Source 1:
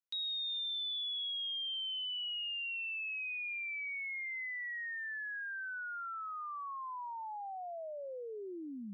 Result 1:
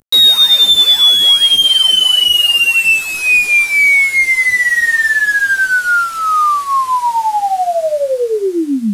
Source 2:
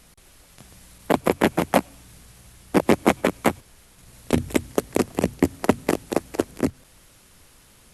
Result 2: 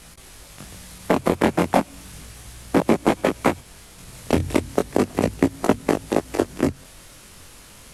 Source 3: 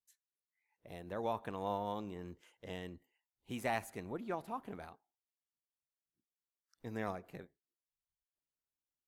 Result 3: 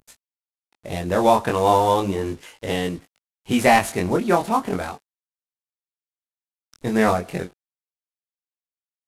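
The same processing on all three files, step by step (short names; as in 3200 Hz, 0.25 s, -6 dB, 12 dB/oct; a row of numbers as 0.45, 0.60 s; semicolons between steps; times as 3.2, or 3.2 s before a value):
CVSD 64 kbps; chorus 0.35 Hz, delay 18 ms, depth 5 ms; compressor 2:1, threshold -29 dBFS; normalise peaks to -2 dBFS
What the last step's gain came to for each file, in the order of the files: +31.5, +10.5, +24.5 dB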